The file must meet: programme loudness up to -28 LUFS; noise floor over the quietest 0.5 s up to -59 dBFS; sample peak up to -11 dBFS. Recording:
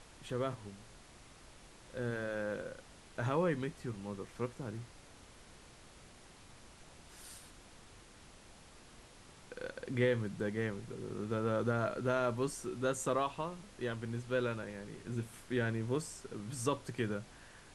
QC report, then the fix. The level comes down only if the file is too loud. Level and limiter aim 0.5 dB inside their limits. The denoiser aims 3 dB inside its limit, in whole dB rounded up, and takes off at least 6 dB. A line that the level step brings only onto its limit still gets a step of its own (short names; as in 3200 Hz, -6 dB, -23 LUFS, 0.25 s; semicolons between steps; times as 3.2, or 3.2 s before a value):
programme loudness -38.0 LUFS: OK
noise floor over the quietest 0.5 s -57 dBFS: fail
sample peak -18.5 dBFS: OK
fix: denoiser 6 dB, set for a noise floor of -57 dBFS